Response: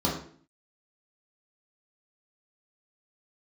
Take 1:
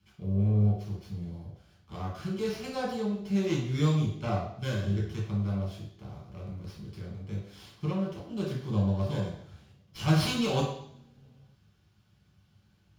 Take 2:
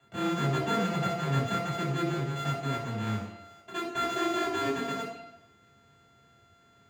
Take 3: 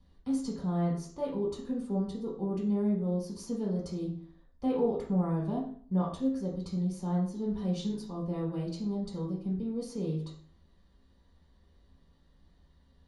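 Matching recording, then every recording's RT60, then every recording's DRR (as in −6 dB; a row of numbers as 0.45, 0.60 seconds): 3; 0.70, 0.90, 0.50 seconds; −5.0, −9.5, −4.0 decibels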